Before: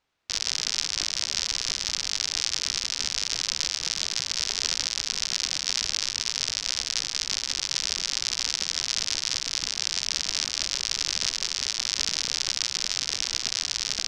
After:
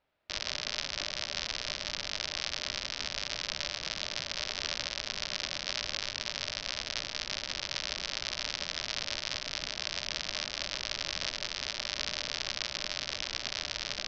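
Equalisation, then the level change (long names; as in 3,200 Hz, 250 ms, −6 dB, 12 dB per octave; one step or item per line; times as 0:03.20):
high-frequency loss of the air 220 metres
parametric band 600 Hz +11 dB 0.23 octaves
notch filter 1,100 Hz, Q 19
0.0 dB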